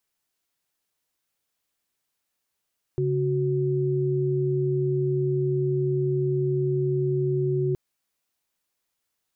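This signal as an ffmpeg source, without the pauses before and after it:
-f lavfi -i "aevalsrc='0.0631*(sin(2*PI*138.59*t)+sin(2*PI*369.99*t))':d=4.77:s=44100"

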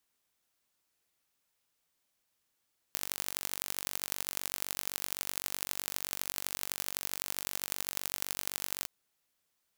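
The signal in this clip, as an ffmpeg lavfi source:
-f lavfi -i "aevalsrc='0.562*eq(mod(n,923),0)*(0.5+0.5*eq(mod(n,3692),0))':d=5.91:s=44100"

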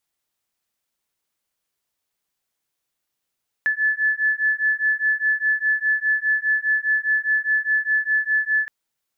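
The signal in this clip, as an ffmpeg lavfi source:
-f lavfi -i "aevalsrc='0.0891*(sin(2*PI*1730*t)+sin(2*PI*1734.9*t))':d=5.02:s=44100"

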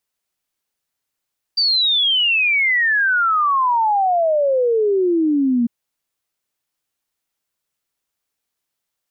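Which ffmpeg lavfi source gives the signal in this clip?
-f lavfi -i "aevalsrc='0.211*clip(min(t,4.1-t)/0.01,0,1)*sin(2*PI*4700*4.1/log(230/4700)*(exp(log(230/4700)*t/4.1)-1))':d=4.1:s=44100"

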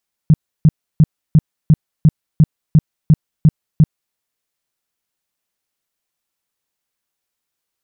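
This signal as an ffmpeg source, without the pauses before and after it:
-f lavfi -i "aevalsrc='0.596*sin(2*PI*155*mod(t,0.35))*lt(mod(t,0.35),6/155)':d=3.85:s=44100"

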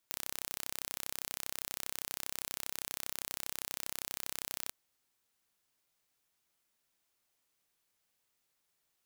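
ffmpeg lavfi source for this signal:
-f lavfi -i "aevalsrc='0.299*eq(mod(n,1357),0)':d=4.6:s=44100"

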